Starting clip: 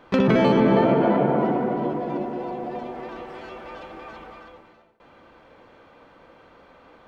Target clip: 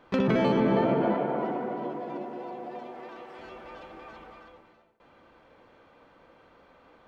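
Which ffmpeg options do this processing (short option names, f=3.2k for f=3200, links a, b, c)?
-filter_complex "[0:a]asettb=1/sr,asplit=3[a][b][c];[a]atrim=end=1.144[d];[b]atrim=start=1.14:end=3.39,asetpts=PTS-STARTPTS,afade=t=in:d=0.004:c=qsin,afade=t=out:st=2.246:d=0.004:c=qsin,highpass=f=320:p=1[e];[c]atrim=start=3.386[f];[d][e]acrossfade=d=0.004:c1=hsin:c2=qsin[g];[g][f]acrossfade=d=0.004:c1=qsin:c2=hsin,volume=-6dB"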